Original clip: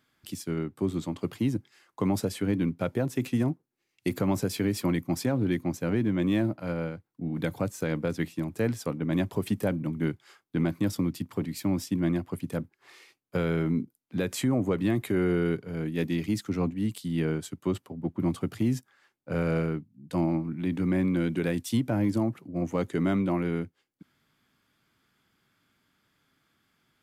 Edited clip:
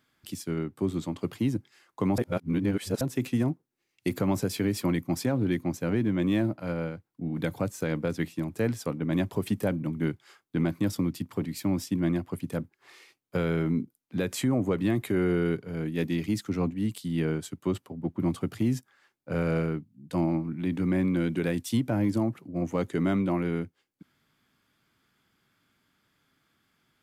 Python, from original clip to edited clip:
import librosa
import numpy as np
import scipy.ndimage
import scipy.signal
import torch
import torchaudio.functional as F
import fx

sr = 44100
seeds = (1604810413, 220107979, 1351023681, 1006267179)

y = fx.edit(x, sr, fx.reverse_span(start_s=2.18, length_s=0.83), tone=tone)